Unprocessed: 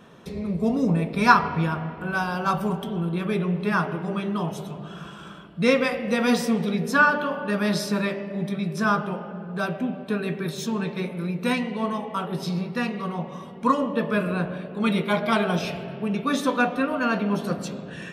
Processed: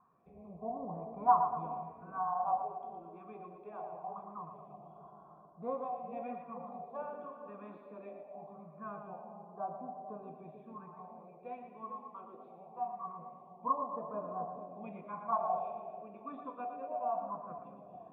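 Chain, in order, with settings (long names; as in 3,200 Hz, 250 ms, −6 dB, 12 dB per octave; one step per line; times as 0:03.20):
all-pass phaser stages 4, 0.23 Hz, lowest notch 120–2,700 Hz
formant resonators in series a
echo with a time of its own for lows and highs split 630 Hz, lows 442 ms, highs 116 ms, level −8 dB
level +2 dB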